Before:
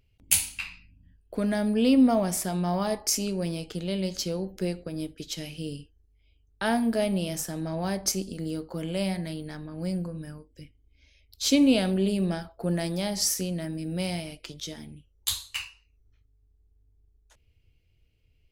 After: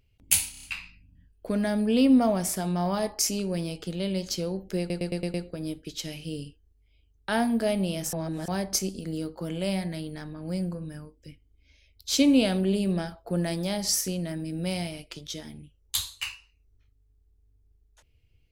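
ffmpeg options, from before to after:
-filter_complex "[0:a]asplit=12[a][b][c][d][e][f][g][h][i][j][k][l];[a]atrim=end=0.542[m];[b]atrim=start=0.508:end=0.542[n];[c]atrim=start=0.508:end=0.542[o];[d]atrim=start=0.508:end=0.542[p];[e]atrim=start=0.508:end=4.782[q];[f]atrim=start=4.668:end=4.782[r];[g]atrim=start=4.668:end=4.782[s];[h]atrim=start=4.668:end=4.782[t];[i]atrim=start=4.668:end=4.782[u];[j]atrim=start=4.668:end=7.462[v];[k]atrim=start=7.458:end=7.812,asetpts=PTS-STARTPTS,areverse[w];[l]atrim=start=7.808[x];[m][n]acrossfade=d=0.004:c1=hsin:c2=hsin[y];[y][o]acrossfade=d=0.004:c1=hsin:c2=hsin[z];[z][p]acrossfade=d=0.004:c1=hsin:c2=hsin[aa];[aa][q]acrossfade=d=0.004:c1=hsin:c2=hsin[ab];[ab][r]acrossfade=d=0.004:c1=hsin:c2=hsin[ac];[ac][s]acrossfade=d=0.004:c1=hsin:c2=hsin[ad];[ad][t]acrossfade=d=0.004:c1=hsin:c2=hsin[ae];[ae][u]acrossfade=d=0.004:c1=hsin:c2=hsin[af];[af][v]acrossfade=d=0.004:c1=hsin:c2=hsin[ag];[ag][w]acrossfade=d=0.004:c1=hsin:c2=hsin[ah];[ah][x]acrossfade=d=0.004:c1=hsin:c2=hsin"

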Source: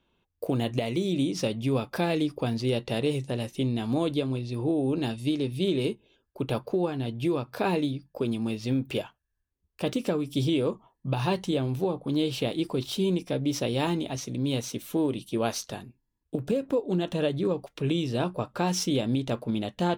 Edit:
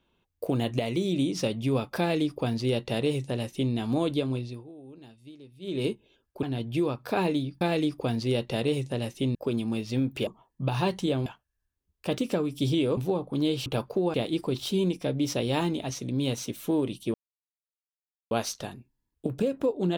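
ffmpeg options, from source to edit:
-filter_complex "[0:a]asplit=12[a][b][c][d][e][f][g][h][i][j][k][l];[a]atrim=end=4.64,asetpts=PTS-STARTPTS,afade=t=out:st=4.4:d=0.24:silence=0.0944061[m];[b]atrim=start=4.64:end=5.61,asetpts=PTS-STARTPTS,volume=-20.5dB[n];[c]atrim=start=5.61:end=6.432,asetpts=PTS-STARTPTS,afade=t=in:d=0.24:silence=0.0944061[o];[d]atrim=start=6.908:end=8.092[p];[e]atrim=start=1.988:end=3.732[q];[f]atrim=start=8.088:end=9.012[r];[g]atrim=start=10.718:end=11.712[s];[h]atrim=start=9.008:end=10.722[t];[i]atrim=start=11.708:end=12.402[u];[j]atrim=start=6.428:end=6.912[v];[k]atrim=start=12.398:end=15.4,asetpts=PTS-STARTPTS,afade=t=out:st=2.998:d=0.004:c=hsin,apad=pad_dur=1.17[w];[l]atrim=start=15.4,asetpts=PTS-STARTPTS,afade=t=in:d=0.004:c=hsin[x];[m][n][o]concat=n=3:v=0:a=1[y];[y][p]acrossfade=d=0.004:c1=hsin:c2=hsin[z];[z][q]acrossfade=d=0.004:c1=hsin:c2=hsin[aa];[aa][r]acrossfade=d=0.004:c1=hsin:c2=hsin[ab];[ab][s]acrossfade=d=0.004:c1=hsin:c2=hsin[ac];[ac][t]acrossfade=d=0.004:c1=hsin:c2=hsin[ad];[ad][u]acrossfade=d=0.004:c1=hsin:c2=hsin[ae];[ae][v]acrossfade=d=0.004:c1=hsin:c2=hsin[af];[w][x]concat=n=2:v=0:a=1[ag];[af][ag]acrossfade=d=0.004:c1=hsin:c2=hsin"

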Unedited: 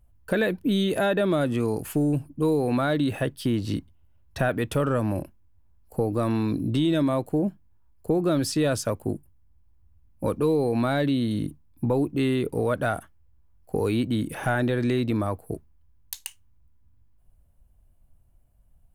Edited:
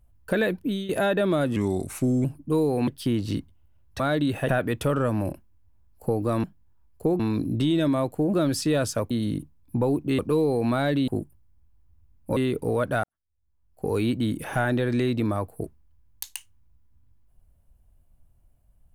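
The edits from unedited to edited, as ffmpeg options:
-filter_complex "[0:a]asplit=15[a][b][c][d][e][f][g][h][i][j][k][l][m][n][o];[a]atrim=end=0.89,asetpts=PTS-STARTPTS,afade=t=out:st=0.56:d=0.33:silence=0.199526[p];[b]atrim=start=0.89:end=1.564,asetpts=PTS-STARTPTS,afade=t=in:d=0.004:c=hsin:silence=0.199526[q];[c]atrim=start=1.56:end=2.15,asetpts=PTS-STARTPTS,asetrate=37926,aresample=44100[r];[d]atrim=start=2.146:end=2.782[s];[e]atrim=start=3.268:end=4.392[t];[f]atrim=start=2.778:end=3.272[u];[g]atrim=start=4.388:end=6.342[v];[h]atrim=start=7.478:end=8.242[w];[i]atrim=start=6.338:end=7.482[x];[j]atrim=start=8.238:end=9.012[y];[k]atrim=start=11.188:end=12.272[z];[l]atrim=start=10.298:end=11.192[aa];[m]atrim=start=9.008:end=10.302[ab];[n]atrim=start=12.268:end=12.94,asetpts=PTS-STARTPTS,afade=t=out:st=0.668:d=0.004:c=hsin[ac];[o]atrim=start=12.94,asetpts=PTS-STARTPTS,afade=t=in:d=0.93:c=qua[ad];[p][q]concat=n=2:v=0:a=1[ae];[ae][r]acrossfade=d=0.004:c1=hsin:c2=hsin[af];[af][s]acrossfade=d=0.004:c1=hsin:c2=hsin[ag];[ag][t]acrossfade=d=0.004:c1=hsin:c2=hsin[ah];[ah][u]acrossfade=d=0.004:c1=hsin:c2=hsin[ai];[ai][v]acrossfade=d=0.004:c1=hsin:c2=hsin[aj];[aj][w]acrossfade=d=0.004:c1=hsin:c2=hsin[ak];[ak][x]acrossfade=d=0.004:c1=hsin:c2=hsin[al];[al][y]acrossfade=d=0.004:c1=hsin:c2=hsin[am];[am][z]acrossfade=d=0.004:c1=hsin:c2=hsin[an];[an][aa]acrossfade=d=0.004:c1=hsin:c2=hsin[ao];[ao][ab]acrossfade=d=0.004:c1=hsin:c2=hsin[ap];[ac][ad]concat=n=2:v=0:a=1[aq];[ap][aq]acrossfade=d=0.004:c1=hsin:c2=hsin"

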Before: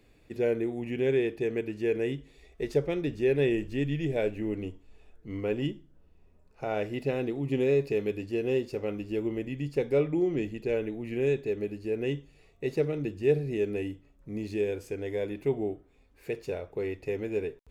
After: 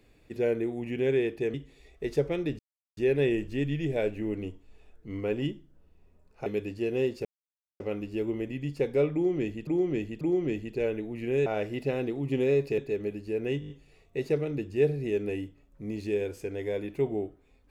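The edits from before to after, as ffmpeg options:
-filter_complex "[0:a]asplit=14[a][b][c][d][e][f][g][h][i][j][k][l][m][n];[a]atrim=end=1.542[o];[b]atrim=start=2.118:end=3.17,asetpts=PTS-STARTPTS,afade=t=out:st=1.048:d=0.004:c=hsin,apad=pad_dur=0.38[p];[c]atrim=start=3.17:end=6.662,asetpts=PTS-STARTPTS,afade=t=in:d=0.004:c=hsin[q];[d]atrim=start=7.978:end=8.77,asetpts=PTS-STARTPTS,afade=t=out:st=0.788:d=0.004:c=hsin,apad=pad_dur=0.55[r];[e]atrim=start=8.77:end=10.642,asetpts=PTS-STARTPTS,afade=t=in:d=0.004:c=hsin[s];[f]atrim=start=10.098:end=10.642[t];[g]atrim=start=10.098:end=11.352[u];[h]atrim=start=6.658:end=7.982[v];[i]atrim=start=11.348:end=12.192[w];[j]atrim=start=12.168:end=12.192[x];[k]atrim=start=12.168:end=12.192[y];[l]atrim=start=12.168:end=12.192[z];[m]atrim=start=12.168:end=12.192[aa];[n]atrim=start=12.168[ab];[p][q]concat=n=2:v=0:a=1[ac];[o][ac]acrossfade=d=0.004:c1=hsin:c2=hsin[ad];[r][s]concat=n=2:v=0:a=1[ae];[ad][ae]acrossfade=d=0.004:c1=hsin:c2=hsin[af];[af][t]acrossfade=d=0.004:c1=hsin:c2=hsin[ag];[ag][u]acrossfade=d=0.004:c1=hsin:c2=hsin[ah];[ah][v]acrossfade=d=0.004:c1=hsin:c2=hsin[ai];[ai][w]acrossfade=d=0.004:c1=hsin:c2=hsin[aj];[aj][x]acrossfade=d=0.004:c1=hsin:c2=hsin[ak];[ak][y]acrossfade=d=0.004:c1=hsin:c2=hsin[al];[al][z]acrossfade=d=0.004:c1=hsin:c2=hsin[am];[am][aa]acrossfade=d=0.004:c1=hsin:c2=hsin[an];[an][ab]acrossfade=d=0.004:c1=hsin:c2=hsin"

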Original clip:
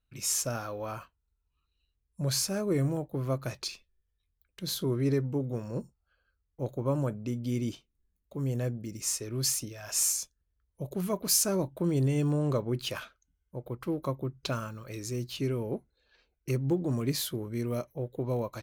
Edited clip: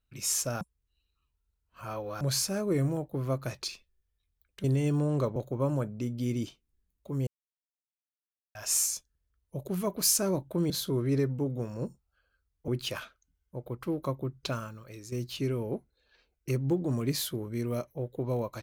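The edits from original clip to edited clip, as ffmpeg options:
-filter_complex "[0:a]asplit=10[a][b][c][d][e][f][g][h][i][j];[a]atrim=end=0.612[k];[b]atrim=start=0.608:end=2.212,asetpts=PTS-STARTPTS,areverse[l];[c]atrim=start=2.208:end=4.642[m];[d]atrim=start=11.958:end=12.682[n];[e]atrim=start=6.618:end=8.53,asetpts=PTS-STARTPTS,afade=t=out:st=1.908:d=0.004:c=hsin[o];[f]atrim=start=8.53:end=9.81,asetpts=PTS-STARTPTS,volume=0[p];[g]atrim=start=9.81:end=11.962,asetpts=PTS-STARTPTS,afade=t=in:d=0.004:c=hsin[q];[h]atrim=start=4.638:end=6.622[r];[i]atrim=start=12.678:end=15.12,asetpts=PTS-STARTPTS,afade=t=out:st=1.732:d=0.71:silence=0.334965[s];[j]atrim=start=15.12,asetpts=PTS-STARTPTS,afade=t=in:d=0.004:c=hsin:silence=0.334965[t];[k][l]acrossfade=d=0.004:c1=hsin:c2=hsin[u];[u][m]acrossfade=d=0.004:c1=hsin:c2=hsin[v];[v][n]acrossfade=d=0.004:c1=hsin:c2=hsin[w];[o][p][q]concat=n=3:v=0:a=1[x];[w][x]acrossfade=d=0.004:c1=hsin:c2=hsin[y];[y][r]acrossfade=d=0.004:c1=hsin:c2=hsin[z];[s][t]concat=n=2:v=0:a=1[aa];[z][aa]acrossfade=d=0.004:c1=hsin:c2=hsin"

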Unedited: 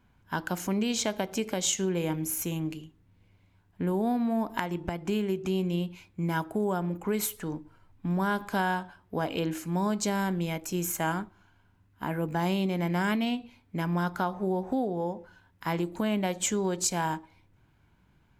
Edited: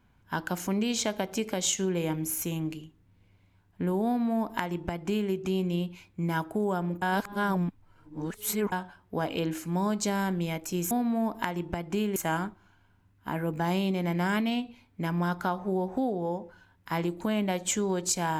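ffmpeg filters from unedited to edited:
-filter_complex "[0:a]asplit=5[a][b][c][d][e];[a]atrim=end=7.022[f];[b]atrim=start=7.018:end=8.722,asetpts=PTS-STARTPTS,areverse[g];[c]atrim=start=8.718:end=10.912[h];[d]atrim=start=4.058:end=5.312[i];[e]atrim=start=10.908[j];[f][g]acrossfade=d=0.004:c1=hsin:c2=hsin[k];[k][h]acrossfade=d=0.004:c1=hsin:c2=hsin[l];[l][i]acrossfade=d=0.004:c1=hsin:c2=hsin[m];[m][j]acrossfade=d=0.004:c1=hsin:c2=hsin"

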